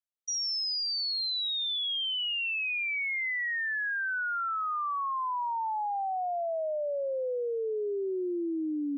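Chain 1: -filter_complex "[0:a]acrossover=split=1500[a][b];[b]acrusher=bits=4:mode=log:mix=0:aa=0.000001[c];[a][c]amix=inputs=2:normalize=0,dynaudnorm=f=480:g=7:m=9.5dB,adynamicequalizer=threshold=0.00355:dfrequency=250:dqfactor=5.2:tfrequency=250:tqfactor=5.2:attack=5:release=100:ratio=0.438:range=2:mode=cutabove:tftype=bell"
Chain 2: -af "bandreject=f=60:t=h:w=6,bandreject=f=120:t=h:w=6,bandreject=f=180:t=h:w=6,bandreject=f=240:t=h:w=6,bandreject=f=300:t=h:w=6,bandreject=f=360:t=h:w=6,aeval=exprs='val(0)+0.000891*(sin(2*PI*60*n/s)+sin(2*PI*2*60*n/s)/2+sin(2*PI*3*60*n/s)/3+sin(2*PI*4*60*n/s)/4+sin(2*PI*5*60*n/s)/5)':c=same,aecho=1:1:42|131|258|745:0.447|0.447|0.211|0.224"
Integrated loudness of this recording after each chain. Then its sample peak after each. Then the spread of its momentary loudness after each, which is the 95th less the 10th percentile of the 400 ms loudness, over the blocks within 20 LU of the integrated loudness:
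-22.0, -28.5 LUFS; -18.0, -21.0 dBFS; 9, 4 LU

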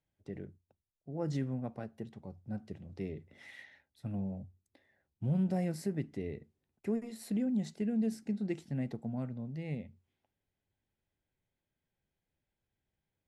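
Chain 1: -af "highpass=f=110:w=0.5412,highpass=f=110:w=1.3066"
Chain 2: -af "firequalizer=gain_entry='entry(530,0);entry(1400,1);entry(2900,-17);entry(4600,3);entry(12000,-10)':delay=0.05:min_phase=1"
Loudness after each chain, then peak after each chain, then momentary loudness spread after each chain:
-37.5, -37.5 LUFS; -23.0, -22.5 dBFS; 18, 16 LU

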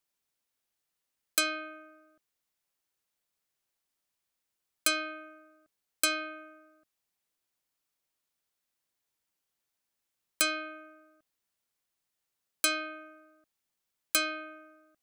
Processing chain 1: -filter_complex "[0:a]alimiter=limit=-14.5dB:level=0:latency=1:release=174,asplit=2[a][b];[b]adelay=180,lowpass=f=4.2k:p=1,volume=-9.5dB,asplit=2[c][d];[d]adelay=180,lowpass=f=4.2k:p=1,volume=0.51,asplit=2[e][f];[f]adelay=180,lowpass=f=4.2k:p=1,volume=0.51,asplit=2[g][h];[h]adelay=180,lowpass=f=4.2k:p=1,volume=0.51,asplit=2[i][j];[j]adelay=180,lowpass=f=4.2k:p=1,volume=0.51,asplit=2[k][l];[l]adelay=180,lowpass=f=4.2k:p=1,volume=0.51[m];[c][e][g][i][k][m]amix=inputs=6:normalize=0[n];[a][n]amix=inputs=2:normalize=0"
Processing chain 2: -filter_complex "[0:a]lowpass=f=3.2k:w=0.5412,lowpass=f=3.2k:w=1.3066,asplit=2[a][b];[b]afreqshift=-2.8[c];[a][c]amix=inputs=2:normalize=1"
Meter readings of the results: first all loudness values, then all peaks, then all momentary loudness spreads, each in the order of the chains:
-34.5, -37.5 LUFS; -14.5, -19.5 dBFS; 18, 19 LU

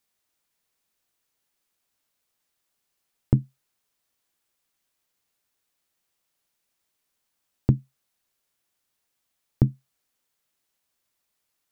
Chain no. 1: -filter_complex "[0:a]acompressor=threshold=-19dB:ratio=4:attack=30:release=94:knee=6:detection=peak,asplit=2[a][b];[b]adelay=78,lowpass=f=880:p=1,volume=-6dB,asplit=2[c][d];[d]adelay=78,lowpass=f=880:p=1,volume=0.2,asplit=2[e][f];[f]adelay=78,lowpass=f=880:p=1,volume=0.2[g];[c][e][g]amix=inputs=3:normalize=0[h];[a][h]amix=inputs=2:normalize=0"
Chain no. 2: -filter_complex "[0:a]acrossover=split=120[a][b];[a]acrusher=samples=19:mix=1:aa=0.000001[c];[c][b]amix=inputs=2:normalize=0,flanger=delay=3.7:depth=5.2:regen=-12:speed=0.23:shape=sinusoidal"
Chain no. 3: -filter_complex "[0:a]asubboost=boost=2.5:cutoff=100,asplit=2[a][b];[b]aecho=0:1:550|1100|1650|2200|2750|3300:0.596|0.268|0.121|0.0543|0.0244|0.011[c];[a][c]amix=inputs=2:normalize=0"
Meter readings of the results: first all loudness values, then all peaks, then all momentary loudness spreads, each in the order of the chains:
-28.5, -30.0, -29.5 LUFS; -4.5, -12.0, -2.5 dBFS; 9, 1, 19 LU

